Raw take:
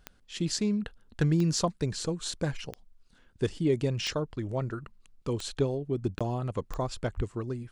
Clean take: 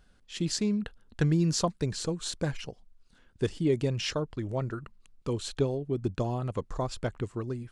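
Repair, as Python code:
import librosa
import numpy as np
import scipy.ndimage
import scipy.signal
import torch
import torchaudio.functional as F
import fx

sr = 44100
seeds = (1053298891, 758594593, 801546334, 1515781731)

y = fx.fix_declip(x, sr, threshold_db=-16.0)
y = fx.fix_declick_ar(y, sr, threshold=10.0)
y = fx.highpass(y, sr, hz=140.0, slope=24, at=(7.16, 7.28), fade=0.02)
y = fx.fix_interpolate(y, sr, at_s=(6.19,), length_ms=16.0)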